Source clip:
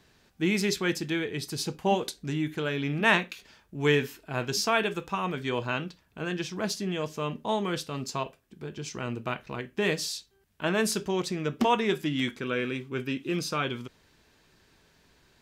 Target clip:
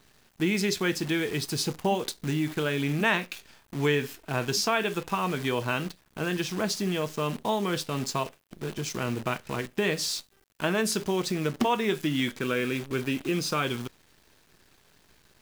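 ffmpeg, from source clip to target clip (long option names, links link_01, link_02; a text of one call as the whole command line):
ffmpeg -i in.wav -af "acrusher=bits=8:dc=4:mix=0:aa=0.000001,acompressor=threshold=-30dB:ratio=2,volume=4.5dB" out.wav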